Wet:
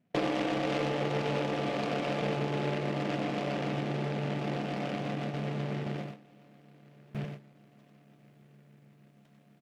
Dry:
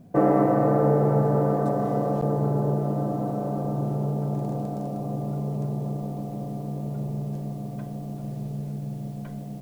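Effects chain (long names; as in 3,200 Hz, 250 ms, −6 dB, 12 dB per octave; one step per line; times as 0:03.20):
high-pass filter 190 Hz 6 dB per octave
downward compressor 5 to 1, threshold −28 dBFS, peak gain reduction 11 dB
noise gate with hold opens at −25 dBFS
single-tap delay 95 ms −5 dB
treble cut that deepens with the level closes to 1,400 Hz, closed at −28 dBFS
short delay modulated by noise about 1,700 Hz, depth 0.11 ms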